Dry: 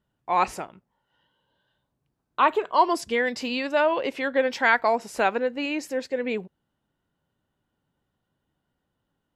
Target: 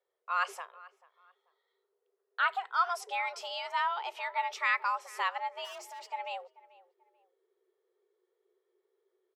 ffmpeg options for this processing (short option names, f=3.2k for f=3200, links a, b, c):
-filter_complex "[0:a]asubboost=boost=10.5:cutoff=78,asplit=3[a][b][c];[a]afade=t=out:st=5.64:d=0.02[d];[b]volume=34.5dB,asoftclip=hard,volume=-34.5dB,afade=t=in:st=5.64:d=0.02,afade=t=out:st=6.07:d=0.02[e];[c]afade=t=in:st=6.07:d=0.02[f];[d][e][f]amix=inputs=3:normalize=0,afreqshift=350,asplit=2[g][h];[h]adelay=438,lowpass=f=2k:p=1,volume=-20dB,asplit=2[i][j];[j]adelay=438,lowpass=f=2k:p=1,volume=0.3[k];[g][i][k]amix=inputs=3:normalize=0,volume=-8.5dB"